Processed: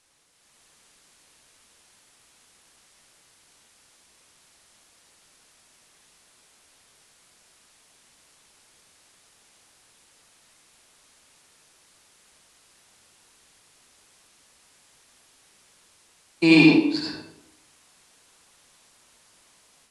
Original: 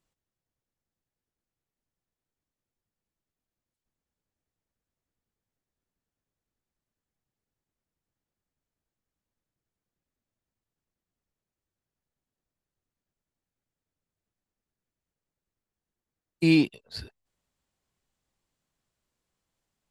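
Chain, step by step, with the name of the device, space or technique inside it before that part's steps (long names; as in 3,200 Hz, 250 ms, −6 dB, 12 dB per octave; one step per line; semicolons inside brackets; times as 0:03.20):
filmed off a television (band-pass filter 290–7,400 Hz; parametric band 970 Hz +9.5 dB 0.54 octaves; convolution reverb RT60 0.70 s, pre-delay 64 ms, DRR −2.5 dB; white noise bed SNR 26 dB; automatic gain control gain up to 7.5 dB; AAC 64 kbit/s 24,000 Hz)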